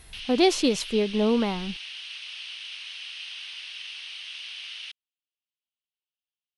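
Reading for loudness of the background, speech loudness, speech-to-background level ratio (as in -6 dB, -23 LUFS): -36.5 LUFS, -24.0 LUFS, 12.5 dB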